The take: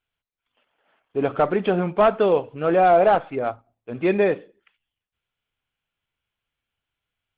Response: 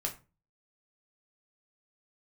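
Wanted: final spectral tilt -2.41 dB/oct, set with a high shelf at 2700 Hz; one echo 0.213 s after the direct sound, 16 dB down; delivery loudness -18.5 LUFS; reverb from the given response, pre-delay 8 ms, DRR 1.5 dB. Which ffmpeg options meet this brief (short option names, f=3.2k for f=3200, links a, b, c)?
-filter_complex "[0:a]highshelf=f=2.7k:g=-3,aecho=1:1:213:0.158,asplit=2[a][b];[1:a]atrim=start_sample=2205,adelay=8[c];[b][c]afir=irnorm=-1:irlink=0,volume=-4dB[d];[a][d]amix=inputs=2:normalize=0,volume=-0.5dB"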